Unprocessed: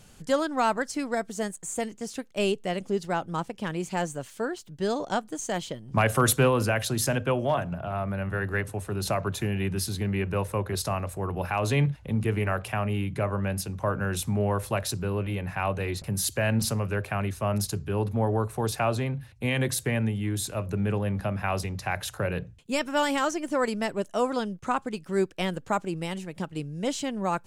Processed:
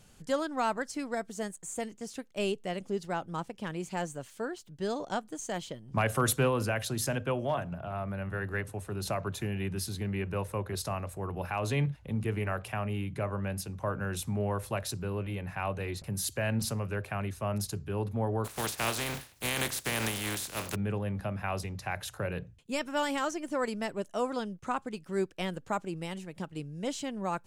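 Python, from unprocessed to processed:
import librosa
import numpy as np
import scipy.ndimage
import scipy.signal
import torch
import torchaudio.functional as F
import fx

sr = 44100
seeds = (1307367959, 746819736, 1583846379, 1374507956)

y = fx.spec_flatten(x, sr, power=0.35, at=(18.44, 20.74), fade=0.02)
y = y * librosa.db_to_amplitude(-5.5)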